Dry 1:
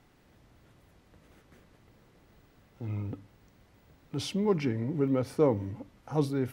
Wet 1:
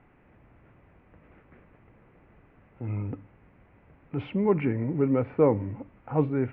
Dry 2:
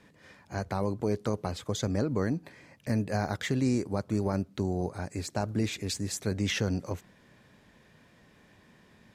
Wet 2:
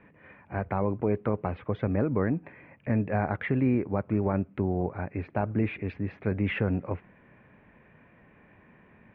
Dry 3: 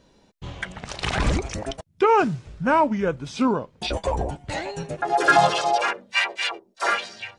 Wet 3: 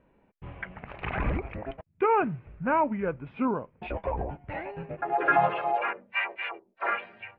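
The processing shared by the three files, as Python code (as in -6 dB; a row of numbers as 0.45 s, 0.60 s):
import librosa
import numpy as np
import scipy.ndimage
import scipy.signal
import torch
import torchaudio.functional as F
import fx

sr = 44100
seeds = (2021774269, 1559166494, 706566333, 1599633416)

y = scipy.signal.sosfilt(scipy.signal.ellip(4, 1.0, 70, 2500.0, 'lowpass', fs=sr, output='sos'), x)
y = y * 10.0 ** (-30 / 20.0) / np.sqrt(np.mean(np.square(y)))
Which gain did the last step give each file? +4.0 dB, +3.0 dB, -5.5 dB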